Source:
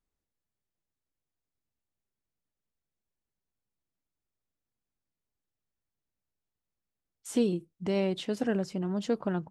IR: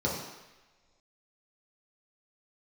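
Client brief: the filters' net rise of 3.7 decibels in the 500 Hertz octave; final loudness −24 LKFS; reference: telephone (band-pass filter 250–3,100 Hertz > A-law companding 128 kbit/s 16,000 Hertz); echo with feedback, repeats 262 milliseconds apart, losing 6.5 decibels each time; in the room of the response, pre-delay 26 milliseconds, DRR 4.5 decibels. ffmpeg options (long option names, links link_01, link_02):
-filter_complex "[0:a]equalizer=frequency=500:width_type=o:gain=5,aecho=1:1:262|524|786|1048|1310|1572:0.473|0.222|0.105|0.0491|0.0231|0.0109,asplit=2[link_01][link_02];[1:a]atrim=start_sample=2205,adelay=26[link_03];[link_02][link_03]afir=irnorm=-1:irlink=0,volume=-14dB[link_04];[link_01][link_04]amix=inputs=2:normalize=0,highpass=250,lowpass=3100,volume=2dB" -ar 16000 -c:a pcm_alaw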